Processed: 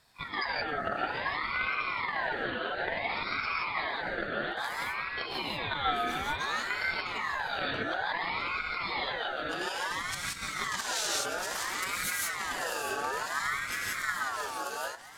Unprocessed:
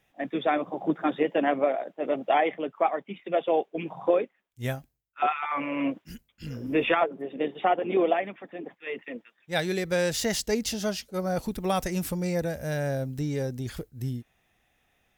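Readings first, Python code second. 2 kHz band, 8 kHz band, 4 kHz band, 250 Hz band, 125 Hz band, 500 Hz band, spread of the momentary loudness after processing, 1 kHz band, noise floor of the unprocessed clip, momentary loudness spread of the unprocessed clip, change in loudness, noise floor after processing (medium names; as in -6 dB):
+5.0 dB, +1.5 dB, +3.0 dB, -14.5 dB, -14.5 dB, -12.0 dB, 3 LU, -3.0 dB, -73 dBFS, 13 LU, -3.5 dB, -39 dBFS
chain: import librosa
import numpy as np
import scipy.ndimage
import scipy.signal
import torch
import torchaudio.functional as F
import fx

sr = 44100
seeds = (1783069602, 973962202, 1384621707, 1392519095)

p1 = fx.hum_notches(x, sr, base_hz=50, count=10)
p2 = p1 + fx.echo_split(p1, sr, split_hz=370.0, low_ms=279, high_ms=652, feedback_pct=52, wet_db=-9.0, dry=0)
p3 = fx.level_steps(p2, sr, step_db=15)
p4 = fx.high_shelf(p3, sr, hz=2400.0, db=11.0)
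p5 = fx.over_compress(p4, sr, threshold_db=-34.0, ratio=-0.5)
p6 = scipy.signal.sosfilt(scipy.signal.butter(2, 11000.0, 'lowpass', fs=sr, output='sos'), p5)
p7 = fx.rev_gated(p6, sr, seeds[0], gate_ms=200, shape='rising', drr_db=-4.0)
p8 = fx.ring_lfo(p7, sr, carrier_hz=1400.0, swing_pct=30, hz=0.58)
y = p8 * 10.0 ** (1.5 / 20.0)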